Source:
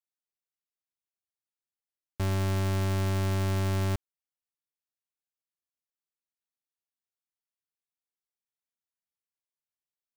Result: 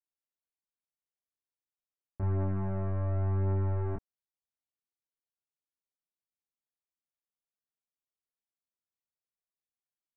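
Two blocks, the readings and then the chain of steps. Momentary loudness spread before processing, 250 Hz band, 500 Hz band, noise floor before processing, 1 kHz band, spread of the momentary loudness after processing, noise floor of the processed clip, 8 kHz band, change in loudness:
4 LU, −4.5 dB, −3.5 dB, below −85 dBFS, −6.0 dB, 7 LU, below −85 dBFS, below −30 dB, −3.0 dB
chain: Gaussian smoothing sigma 6.2 samples
multi-voice chorus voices 2, 0.23 Hz, delay 28 ms, depth 5 ms

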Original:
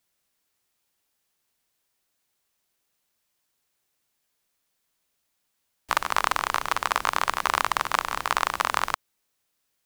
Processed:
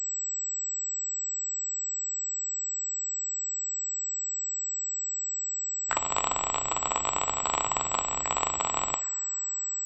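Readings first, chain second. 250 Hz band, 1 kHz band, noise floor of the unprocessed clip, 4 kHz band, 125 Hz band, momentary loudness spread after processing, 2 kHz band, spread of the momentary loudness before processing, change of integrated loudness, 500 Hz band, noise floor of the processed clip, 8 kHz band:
+0.5 dB, −5.0 dB, −76 dBFS, −4.5 dB, +1.0 dB, 2 LU, −9.5 dB, 4 LU, −3.0 dB, −1.0 dB, −33 dBFS, +15.5 dB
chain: coupled-rooms reverb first 0.53 s, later 4.5 s, from −21 dB, DRR 9.5 dB
flanger swept by the level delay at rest 11.5 ms, full sweep at −24 dBFS
switching amplifier with a slow clock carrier 7,800 Hz

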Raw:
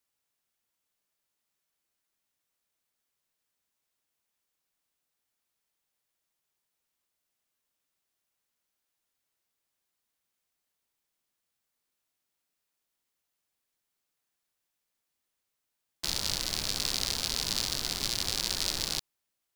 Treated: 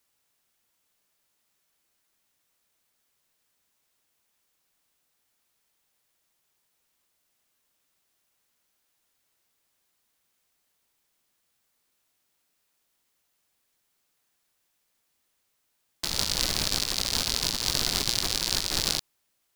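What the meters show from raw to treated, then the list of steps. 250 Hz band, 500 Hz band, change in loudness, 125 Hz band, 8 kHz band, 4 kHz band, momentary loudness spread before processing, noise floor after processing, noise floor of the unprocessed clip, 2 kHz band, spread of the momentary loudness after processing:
+5.5 dB, +5.5 dB, +4.0 dB, +5.0 dB, +4.0 dB, +4.0 dB, 3 LU, −75 dBFS, −84 dBFS, +4.5 dB, 3 LU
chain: compressor whose output falls as the input rises −34 dBFS, ratio −0.5
level +6.5 dB

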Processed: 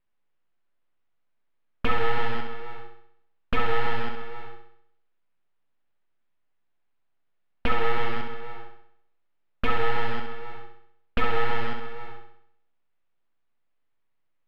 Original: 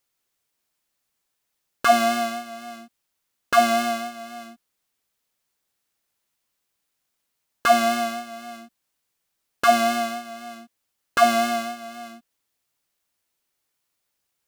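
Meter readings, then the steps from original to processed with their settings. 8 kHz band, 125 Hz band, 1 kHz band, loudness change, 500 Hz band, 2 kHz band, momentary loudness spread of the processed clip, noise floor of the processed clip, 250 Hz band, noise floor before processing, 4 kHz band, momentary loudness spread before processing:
below −25 dB, can't be measured, −9.0 dB, −8.5 dB, −7.5 dB, −4.5 dB, 17 LU, −70 dBFS, −9.0 dB, −78 dBFS, −8.0 dB, 20 LU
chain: loose part that buzzes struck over −42 dBFS, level −19 dBFS
downward compressor 3 to 1, threshold −20 dBFS, peak gain reduction 7.5 dB
frequency shifter −55 Hz
full-wave rectification
high-frequency loss of the air 490 metres
on a send: flutter between parallel walls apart 11.1 metres, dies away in 0.68 s
on the sum: level +3.5 dB

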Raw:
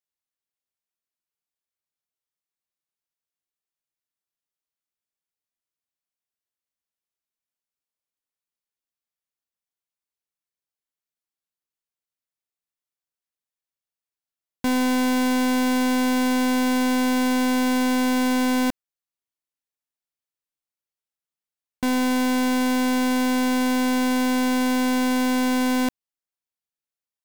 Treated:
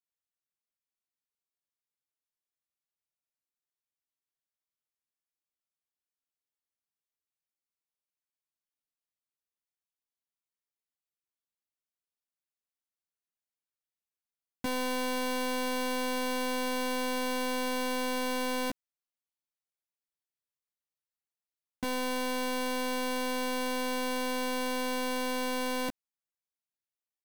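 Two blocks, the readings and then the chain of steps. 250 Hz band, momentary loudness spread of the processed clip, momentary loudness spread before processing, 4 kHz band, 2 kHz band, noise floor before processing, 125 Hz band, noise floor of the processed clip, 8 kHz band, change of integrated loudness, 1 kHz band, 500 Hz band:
−15.5 dB, 2 LU, 2 LU, −5.5 dB, −8.0 dB, below −85 dBFS, can't be measured, below −85 dBFS, −7.5 dB, −10.5 dB, −7.5 dB, −4.5 dB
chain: double-tracking delay 14 ms −3.5 dB
level −8.5 dB

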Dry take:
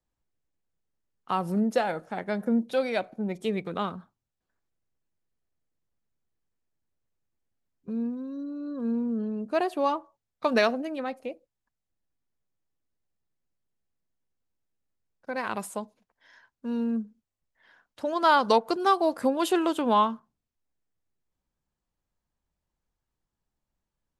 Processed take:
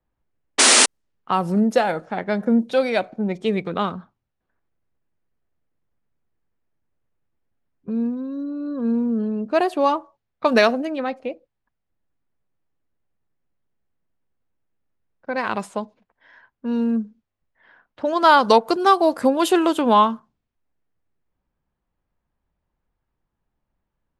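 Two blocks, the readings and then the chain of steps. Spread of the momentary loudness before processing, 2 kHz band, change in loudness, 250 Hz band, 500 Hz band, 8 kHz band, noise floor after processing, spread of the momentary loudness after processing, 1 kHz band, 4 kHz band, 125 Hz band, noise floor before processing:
13 LU, +9.0 dB, +8.0 dB, +7.0 dB, +7.0 dB, +24.0 dB, −79 dBFS, 14 LU, +7.0 dB, +13.0 dB, can't be measured, below −85 dBFS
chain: sound drawn into the spectrogram noise, 0:00.58–0:00.86, 220–10,000 Hz −20 dBFS
low-pass that shuts in the quiet parts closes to 2,300 Hz, open at −22 dBFS
level +7 dB

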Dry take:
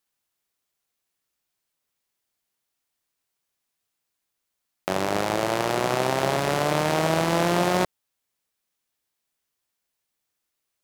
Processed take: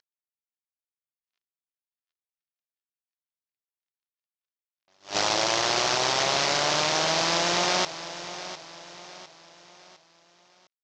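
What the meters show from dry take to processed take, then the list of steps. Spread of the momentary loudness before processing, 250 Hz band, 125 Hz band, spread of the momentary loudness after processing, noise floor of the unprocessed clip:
5 LU, −8.5 dB, −10.0 dB, 18 LU, −81 dBFS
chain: variable-slope delta modulation 32 kbit/s
in parallel at +1.5 dB: brickwall limiter −23 dBFS, peak gain reduction 10.5 dB
on the sum: spectral tilt +3.5 dB per octave
low-pass that shuts in the quiet parts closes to 2,500 Hz, open at −21.5 dBFS
speech leveller
high-shelf EQ 3,000 Hz +10.5 dB
on a send: repeating echo 705 ms, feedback 43%, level −13.5 dB
on the sum: noise reduction from a noise print of the clip's start 15 dB
level that may rise only so fast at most 240 dB per second
level −2 dB

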